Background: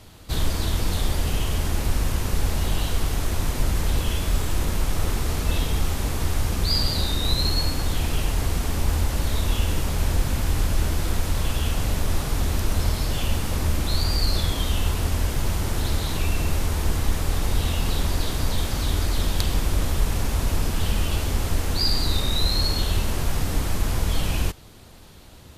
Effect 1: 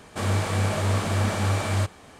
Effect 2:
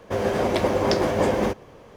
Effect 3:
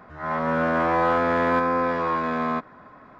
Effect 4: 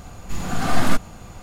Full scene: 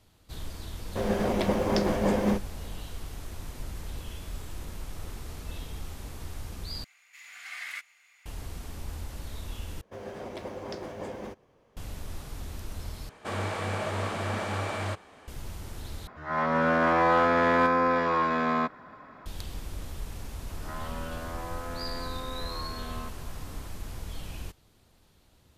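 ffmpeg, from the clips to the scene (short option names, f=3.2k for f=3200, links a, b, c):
-filter_complex "[2:a]asplit=2[a][b];[3:a]asplit=2[c][d];[0:a]volume=-15.5dB[e];[a]equalizer=f=200:w=6.8:g=12[f];[4:a]highpass=f=2.1k:t=q:w=6.4[g];[1:a]bass=f=250:g=-8,treble=f=4k:g=-8[h];[c]highshelf=f=2.5k:g=6.5[i];[d]acompressor=threshold=-31dB:ratio=6:attack=3.2:release=140:knee=1:detection=peak[j];[e]asplit=5[k][l][m][n][o];[k]atrim=end=6.844[p];[g]atrim=end=1.42,asetpts=PTS-STARTPTS,volume=-16.5dB[q];[l]atrim=start=8.256:end=9.814[r];[b]atrim=end=1.96,asetpts=PTS-STARTPTS,volume=-17dB[s];[m]atrim=start=11.766:end=13.094[t];[h]atrim=end=2.19,asetpts=PTS-STARTPTS,volume=-3dB[u];[n]atrim=start=15.276:end=16.074[v];[i]atrim=end=3.19,asetpts=PTS-STARTPTS,volume=-2dB[w];[o]atrim=start=19.256[x];[f]atrim=end=1.96,asetpts=PTS-STARTPTS,volume=-6dB,afade=t=in:d=0.004:c=hsin,afade=t=out:st=1.956:d=0.004:c=hsin,adelay=850[y];[j]atrim=end=3.19,asetpts=PTS-STARTPTS,volume=-5.5dB,afade=t=in:d=0.004:c=hsin,afade=t=out:st=3.186:d=0.004:c=hsin,adelay=20490[z];[p][q]acrossfade=d=0.004:c1=hsin:c2=hsin[aa];[aa][r]acrossfade=d=0.004:c1=hsin:c2=hsin[ab];[ab][s]acrossfade=d=0.004:c1=hsin:c2=hsin[ac];[ac][t]acrossfade=d=0.004:c1=hsin:c2=hsin[ad];[ad][u]acrossfade=d=0.004:c1=hsin:c2=hsin[ae];[ae][v]acrossfade=d=0.004:c1=hsin:c2=hsin[af];[af][w]acrossfade=d=0.004:c1=hsin:c2=hsin[ag];[ag][x]acrossfade=d=0.004:c1=hsin:c2=hsin[ah];[ah][y][z]amix=inputs=3:normalize=0"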